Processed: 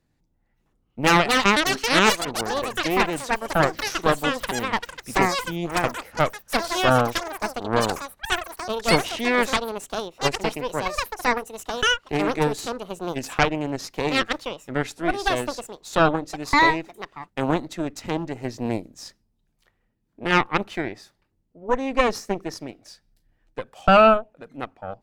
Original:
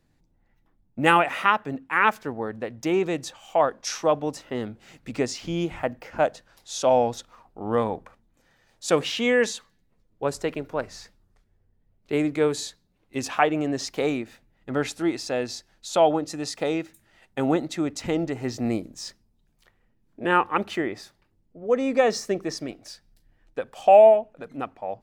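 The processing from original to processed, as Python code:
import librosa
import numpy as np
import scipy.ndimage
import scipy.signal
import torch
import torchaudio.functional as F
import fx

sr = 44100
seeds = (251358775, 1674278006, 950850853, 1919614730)

y = fx.cheby_harmonics(x, sr, harmonics=(6,), levels_db=(-8,), full_scale_db=-1.5)
y = fx.echo_pitch(y, sr, ms=595, semitones=7, count=3, db_per_echo=-3.0)
y = y * librosa.db_to_amplitude(-3.5)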